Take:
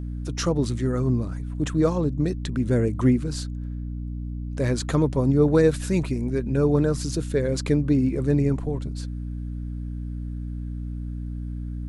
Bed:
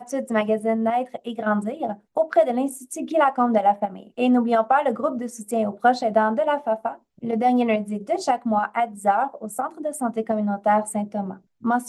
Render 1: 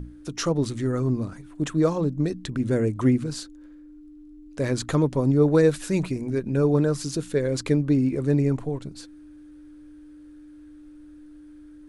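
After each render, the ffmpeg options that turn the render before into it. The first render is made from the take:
-af "bandreject=f=60:t=h:w=6,bandreject=f=120:t=h:w=6,bandreject=f=180:t=h:w=6,bandreject=f=240:t=h:w=6"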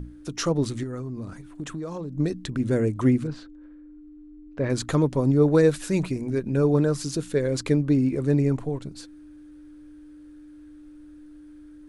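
-filter_complex "[0:a]asettb=1/sr,asplit=3[a][b][c];[a]atrim=end=0.834[d];[b]atrim=start=0.83:end=2.18,asetpts=PTS-STARTPTS,afade=t=in:d=0.004:c=qsin,afade=t=out:st=1.346:d=0.004:c=qsin,acompressor=threshold=-29dB:ratio=10:attack=3.2:release=140:knee=1:detection=peak[e];[c]atrim=start=2.176[f];[d][e]acrossfade=d=0.004:c1=hsin:c2=qsin[g];[g][f]acrossfade=d=0.004:c1=qsin:c2=hsin,asettb=1/sr,asplit=3[h][i][j];[h]atrim=end=3.274[k];[i]atrim=start=3.27:end=4.7,asetpts=PTS-STARTPTS,afade=t=in:d=0.004:c=qsin,afade=t=out:st=1.426:d=0.004:c=qsin,lowpass=2.3k[l];[j]atrim=start=4.696[m];[k][l]acrossfade=d=0.004:c1=hsin:c2=qsin[n];[n][m]acrossfade=d=0.004:c1=qsin:c2=hsin"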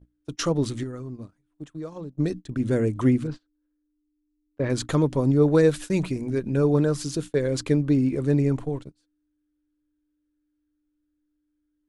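-af "agate=range=-29dB:threshold=-32dB:ratio=16:detection=peak,equalizer=f=3.2k:t=o:w=0.33:g=3.5"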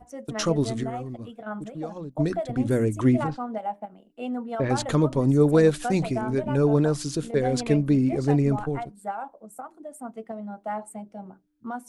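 -filter_complex "[1:a]volume=-12.5dB[a];[0:a][a]amix=inputs=2:normalize=0"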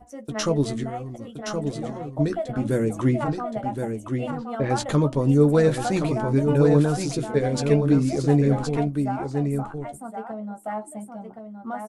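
-filter_complex "[0:a]asplit=2[a][b];[b]adelay=14,volume=-8.5dB[c];[a][c]amix=inputs=2:normalize=0,aecho=1:1:1070:0.501"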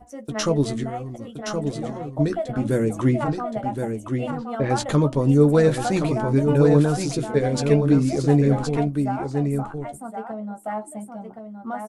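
-af "volume=1.5dB"

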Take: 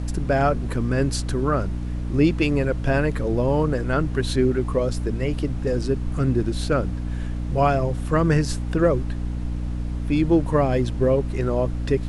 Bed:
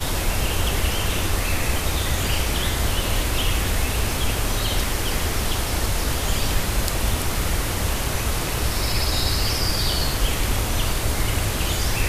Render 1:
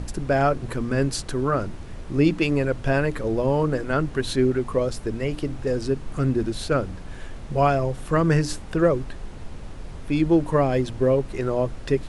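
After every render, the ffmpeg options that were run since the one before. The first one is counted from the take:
-af "bandreject=f=60:t=h:w=6,bandreject=f=120:t=h:w=6,bandreject=f=180:t=h:w=6,bandreject=f=240:t=h:w=6,bandreject=f=300:t=h:w=6"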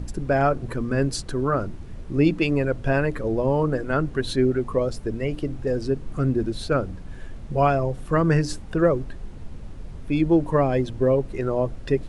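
-af "afftdn=nr=7:nf=-37"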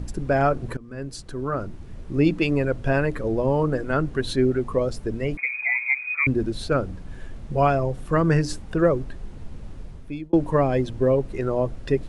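-filter_complex "[0:a]asettb=1/sr,asplit=3[a][b][c];[a]atrim=end=5.374[d];[b]atrim=start=5.37:end=6.27,asetpts=PTS-STARTPTS,afade=t=in:d=0.004:c=qsin,afade=t=out:st=0.896:d=0.004:c=qsin,lowpass=f=2.1k:t=q:w=0.5098,lowpass=f=2.1k:t=q:w=0.6013,lowpass=f=2.1k:t=q:w=0.9,lowpass=f=2.1k:t=q:w=2.563,afreqshift=-2500[e];[c]atrim=start=6.266[f];[d][e]acrossfade=d=0.004:c1=hsin:c2=qsin[g];[g][f]acrossfade=d=0.004:c1=qsin:c2=hsin,asplit=3[h][i][j];[h]atrim=end=0.77,asetpts=PTS-STARTPTS,afade=t=out:st=0.766:d=0.004:c=hsin:silence=0.1[k];[i]atrim=start=0.77:end=10.33,asetpts=PTS-STARTPTS,afade=t=in:d=1.85:c=qsin:silence=0.1,afade=t=out:st=9.02:d=0.54[l];[j]atrim=start=10.33,asetpts=PTS-STARTPTS,afade=t=in:d=0.004:c=hsin[m];[k][l][m]concat=n=3:v=0:a=1"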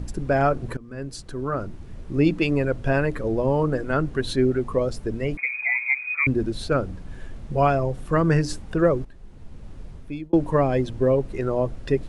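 -filter_complex "[0:a]asplit=2[a][b];[a]atrim=end=9.05,asetpts=PTS-STARTPTS,afade=t=out:st=9.046:d=0.004:c=hsin:silence=0.223872[c];[b]atrim=start=9.05,asetpts=PTS-STARTPTS,afade=t=in:d=0.92:silence=0.223872[d];[c][d]concat=n=2:v=0:a=1"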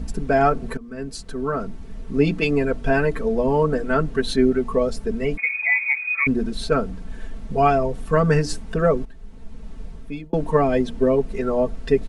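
-af "aecho=1:1:4.5:0.94"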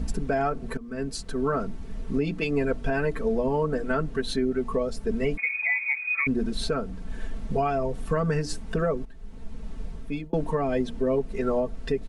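-af "alimiter=limit=-16dB:level=0:latency=1:release=470"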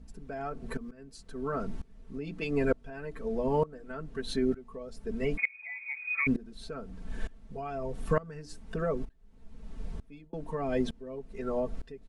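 -af "aeval=exprs='val(0)*pow(10,-22*if(lt(mod(-1.1*n/s,1),2*abs(-1.1)/1000),1-mod(-1.1*n/s,1)/(2*abs(-1.1)/1000),(mod(-1.1*n/s,1)-2*abs(-1.1)/1000)/(1-2*abs(-1.1)/1000))/20)':c=same"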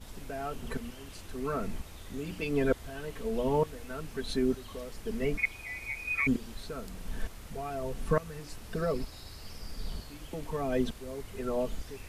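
-filter_complex "[1:a]volume=-25.5dB[a];[0:a][a]amix=inputs=2:normalize=0"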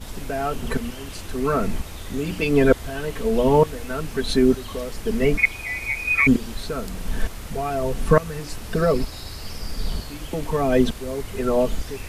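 -af "volume=11.5dB"

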